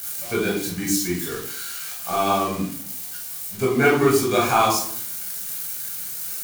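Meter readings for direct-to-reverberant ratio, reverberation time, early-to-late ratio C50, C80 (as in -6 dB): -3.5 dB, 0.60 s, 5.0 dB, 9.0 dB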